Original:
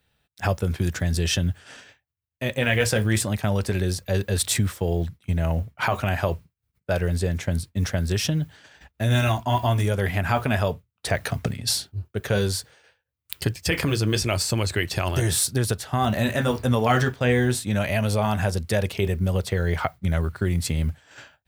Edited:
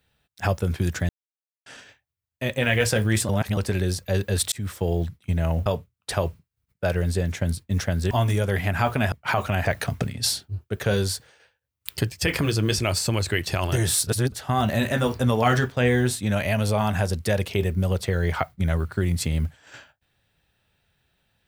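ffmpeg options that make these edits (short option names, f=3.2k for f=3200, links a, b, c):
-filter_complex "[0:a]asplit=13[a][b][c][d][e][f][g][h][i][j][k][l][m];[a]atrim=end=1.09,asetpts=PTS-STARTPTS,afade=t=out:st=1.086:d=0.004:c=hsin[n];[b]atrim=start=1.09:end=1.66,asetpts=PTS-STARTPTS,volume=0[o];[c]atrim=start=1.66:end=3.292,asetpts=PTS-STARTPTS,afade=t=in:d=0.004:c=hsin[p];[d]atrim=start=3.288:end=3.572,asetpts=PTS-STARTPTS,areverse[q];[e]atrim=start=3.568:end=4.52,asetpts=PTS-STARTPTS,afade=t=out:st=0.948:d=0.004:c=hsin[r];[f]atrim=start=4.52:end=5.662,asetpts=PTS-STARTPTS,afade=t=in:d=0.25[s];[g]atrim=start=10.618:end=11.092[t];[h]atrim=start=6.188:end=8.172[u];[i]atrim=start=9.608:end=10.622[v];[j]atrim=start=5.658:end=6.192[w];[k]atrim=start=11.088:end=15.512[x];[l]atrim=start=15.508:end=15.762,asetpts=PTS-STARTPTS,areverse[y];[m]atrim=start=15.758[z];[n][o][p]concat=n=3:v=0:a=1[aa];[aa][q]acrossfade=d=0.004:c1=hsin:c2=hsin[ab];[r][s]concat=n=2:v=0:a=1[ac];[ab][ac]acrossfade=d=0.004:c1=hsin:c2=hsin[ad];[ad][t]acrossfade=d=0.004:c1=hsin:c2=hsin[ae];[ae][u]acrossfade=d=0.004:c1=hsin:c2=hsin[af];[af][v]acrossfade=d=0.004:c1=hsin:c2=hsin[ag];[ag][w]acrossfade=d=0.004:c1=hsin:c2=hsin[ah];[ah][x]acrossfade=d=0.004:c1=hsin:c2=hsin[ai];[ai][y]acrossfade=d=0.004:c1=hsin:c2=hsin[aj];[aj][z]acrossfade=d=0.004:c1=hsin:c2=hsin"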